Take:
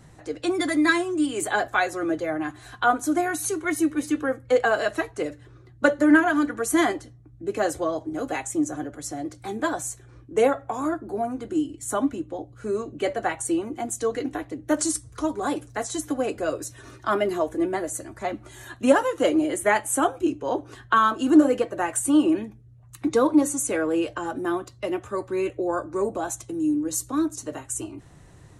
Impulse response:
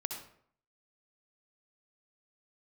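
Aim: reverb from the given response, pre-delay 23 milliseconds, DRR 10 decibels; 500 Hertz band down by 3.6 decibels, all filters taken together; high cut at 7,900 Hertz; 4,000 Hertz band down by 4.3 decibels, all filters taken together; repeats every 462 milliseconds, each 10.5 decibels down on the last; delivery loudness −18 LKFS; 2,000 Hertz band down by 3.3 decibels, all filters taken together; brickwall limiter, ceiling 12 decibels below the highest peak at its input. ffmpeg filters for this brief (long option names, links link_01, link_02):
-filter_complex "[0:a]lowpass=7900,equalizer=frequency=500:width_type=o:gain=-4.5,equalizer=frequency=2000:width_type=o:gain=-3.5,equalizer=frequency=4000:width_type=o:gain=-4,alimiter=limit=-19.5dB:level=0:latency=1,aecho=1:1:462|924|1386:0.299|0.0896|0.0269,asplit=2[link_01][link_02];[1:a]atrim=start_sample=2205,adelay=23[link_03];[link_02][link_03]afir=irnorm=-1:irlink=0,volume=-11dB[link_04];[link_01][link_04]amix=inputs=2:normalize=0,volume=11.5dB"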